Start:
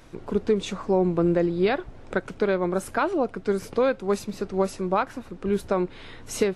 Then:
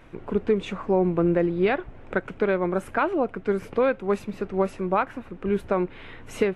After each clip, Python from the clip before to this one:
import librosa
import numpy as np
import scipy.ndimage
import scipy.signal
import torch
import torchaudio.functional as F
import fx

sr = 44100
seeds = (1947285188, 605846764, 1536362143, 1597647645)

y = fx.high_shelf_res(x, sr, hz=3500.0, db=-9.5, q=1.5)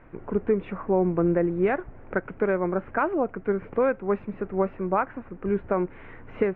y = scipy.signal.sosfilt(scipy.signal.butter(4, 2100.0, 'lowpass', fs=sr, output='sos'), x)
y = F.gain(torch.from_numpy(y), -1.0).numpy()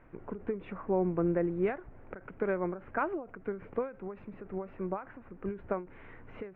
y = fx.end_taper(x, sr, db_per_s=150.0)
y = F.gain(torch.from_numpy(y), -6.5).numpy()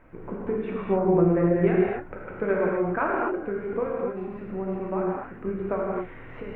y = fx.rev_gated(x, sr, seeds[0], gate_ms=290, shape='flat', drr_db=-4.0)
y = F.gain(torch.from_numpy(y), 3.0).numpy()